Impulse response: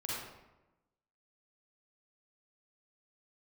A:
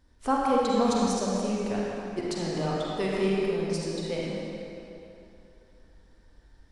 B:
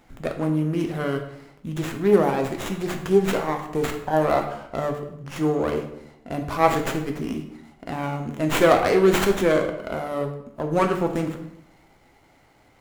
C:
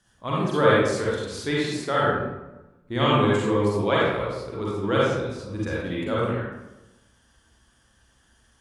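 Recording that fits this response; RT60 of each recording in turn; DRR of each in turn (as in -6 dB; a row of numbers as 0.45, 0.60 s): C; 2.9, 0.80, 1.0 s; -5.0, 4.0, -6.5 dB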